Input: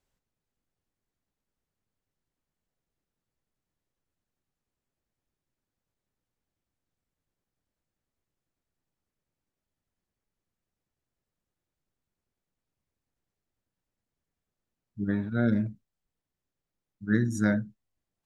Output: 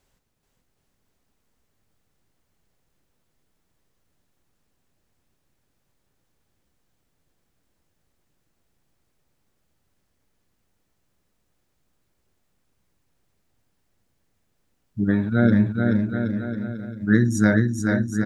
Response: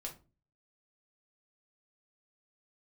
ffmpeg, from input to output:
-filter_complex "[0:a]asplit=2[link_01][link_02];[link_02]acompressor=threshold=-37dB:ratio=6,volume=-0.5dB[link_03];[link_01][link_03]amix=inputs=2:normalize=0,aecho=1:1:430|774|1049|1269|1445:0.631|0.398|0.251|0.158|0.1,volume=6dB"

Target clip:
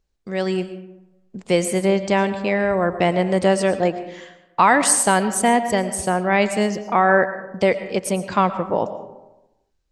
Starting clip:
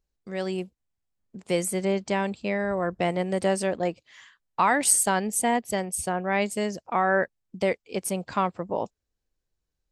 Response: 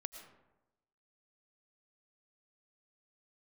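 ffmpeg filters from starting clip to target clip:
-filter_complex "[0:a]asplit=2[link_01][link_02];[1:a]atrim=start_sample=2205,lowpass=9000[link_03];[link_02][link_03]afir=irnorm=-1:irlink=0,volume=7.5dB[link_04];[link_01][link_04]amix=inputs=2:normalize=0,volume=-1dB"

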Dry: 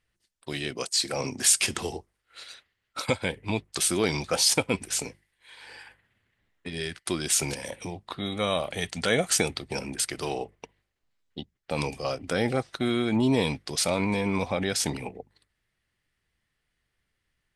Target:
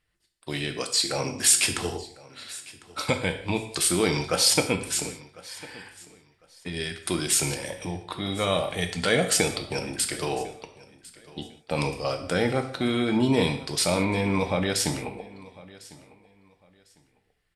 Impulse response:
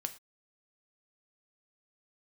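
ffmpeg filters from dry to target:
-filter_complex "[0:a]bandreject=frequency=6200:width=11,aecho=1:1:1051|2102:0.0891|0.0205[link_01];[1:a]atrim=start_sample=2205,asetrate=27783,aresample=44100[link_02];[link_01][link_02]afir=irnorm=-1:irlink=0"

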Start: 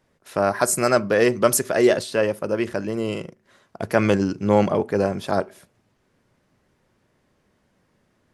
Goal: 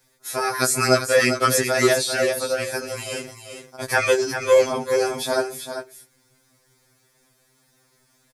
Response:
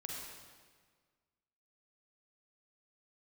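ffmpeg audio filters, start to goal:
-filter_complex "[0:a]bandreject=frequency=2900:width=5.7,acrossover=split=4500[link_01][link_02];[link_02]acompressor=threshold=-41dB:ratio=4:attack=1:release=60[link_03];[link_01][link_03]amix=inputs=2:normalize=0,crystalizer=i=7:c=0,asplit=2[link_04][link_05];[link_05]aecho=0:1:395:0.376[link_06];[link_04][link_06]amix=inputs=2:normalize=0,afftfilt=real='re*2.45*eq(mod(b,6),0)':imag='im*2.45*eq(mod(b,6),0)':win_size=2048:overlap=0.75"

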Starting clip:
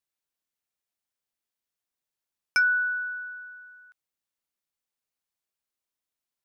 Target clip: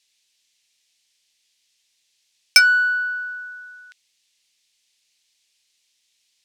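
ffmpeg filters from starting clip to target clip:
ffmpeg -i in.wav -af "lowpass=5600,aexciter=amount=5.3:drive=9.1:freq=2000,acontrast=82,volume=-1dB" out.wav

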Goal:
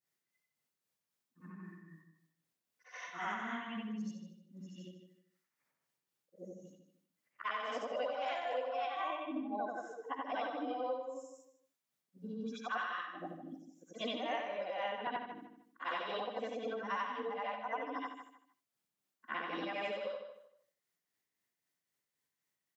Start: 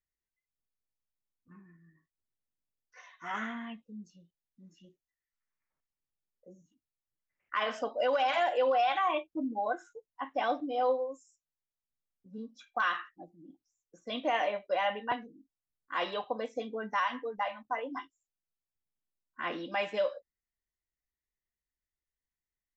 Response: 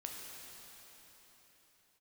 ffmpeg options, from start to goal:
-filter_complex "[0:a]afftfilt=real='re':imag='-im':win_size=8192:overlap=0.75,highpass=frequency=130:width=0.5412,highpass=frequency=130:width=1.3066,acompressor=threshold=-49dB:ratio=5,tremolo=f=3.8:d=0.44,asplit=2[link_01][link_02];[link_02]adelay=153,lowpass=frequency=4600:poles=1,volume=-9dB,asplit=2[link_03][link_04];[link_04]adelay=153,lowpass=frequency=4600:poles=1,volume=0.27,asplit=2[link_05][link_06];[link_06]adelay=153,lowpass=frequency=4600:poles=1,volume=0.27[link_07];[link_01][link_03][link_05][link_07]amix=inputs=4:normalize=0,volume=13dB"

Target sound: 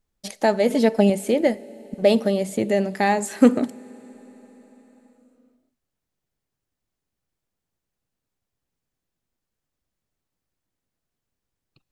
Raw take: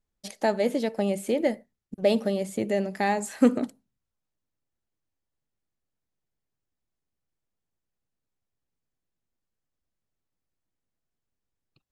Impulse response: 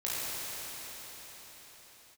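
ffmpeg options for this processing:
-filter_complex "[0:a]asettb=1/sr,asplit=3[link_01][link_02][link_03];[link_01]atrim=end=0.704[link_04];[link_02]atrim=start=0.7:end=1.1,asetpts=PTS-STARTPTS,afade=type=in:duration=0.004:curve=qsin,afade=type=out:start_time=0.396:duration=0.004:curve=qsin,aecho=1:1:4.6:0.91,atrim=end_sample=17640[link_05];[link_03]atrim=start=1.096[link_06];[link_04][link_05]acrossfade=duration=0.004:curve1=hsin:curve2=qsin[link_07];[link_07][link_06]acrossfade=duration=0.004:curve1=qsin:curve2=hsin,asplit=2[link_08][link_09];[link_09]equalizer=frequency=1600:width_type=o:width=2.8:gain=-4.5[link_10];[1:a]atrim=start_sample=2205[link_11];[link_10][link_11]afir=irnorm=-1:irlink=0,volume=-27dB[link_12];[link_08][link_12]amix=inputs=2:normalize=0,volume=5dB"

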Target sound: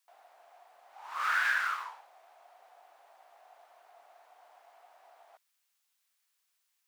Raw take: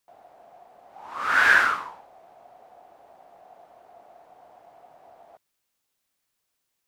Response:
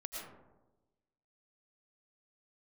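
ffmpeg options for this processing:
-filter_complex "[0:a]highpass=1100,acompressor=threshold=-27dB:ratio=5,asettb=1/sr,asplit=3[link_01][link_02][link_03];[link_01]atrim=end=1.044[link_04];[link_02]atrim=start=1.04:end=1.85,asetpts=PTS-STARTPTS,afade=type=in:duration=0.004:curve=qsin,afade=type=out:start_time=0.806:duration=0.004:curve=qsin,acrusher=bits=7:mode=log:mix=0:aa=0.000001[link_05];[link_03]atrim=start=1.846[link_06];[link_04][link_05]acrossfade=duration=0.004:curve1=hsin:curve2=qsin[link_07];[link_07][link_06]acrossfade=duration=0.004:curve1=qsin:curve2=hsin"

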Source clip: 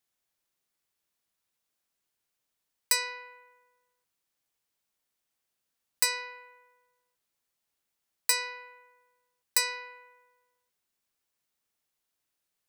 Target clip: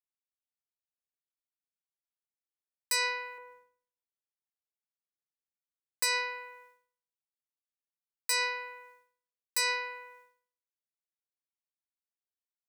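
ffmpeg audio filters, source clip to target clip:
ffmpeg -i in.wav -filter_complex "[0:a]agate=range=-33dB:threshold=-60dB:ratio=3:detection=peak,asettb=1/sr,asplit=3[link_01][link_02][link_03];[link_01]atrim=end=3.384[link_04];[link_02]atrim=start=3.38:end=6.03,asetpts=PTS-STARTPTS,afade=type=in:duration=0.004:curve=qsin,afade=type=out:start_time=2.646:duration=0.004:curve=qsin,tiltshelf=frequency=1300:gain=6.5[link_05];[link_03]atrim=start=6.026[link_06];[link_04][link_05]acrossfade=duration=0.004:curve1=hsin:curve2=qsin[link_07];[link_07][link_06]acrossfade=duration=0.004:curve1=qsin:curve2=hsin,alimiter=level_in=1dB:limit=-24dB:level=0:latency=1:release=109,volume=-1dB,volume=6.5dB" out.wav

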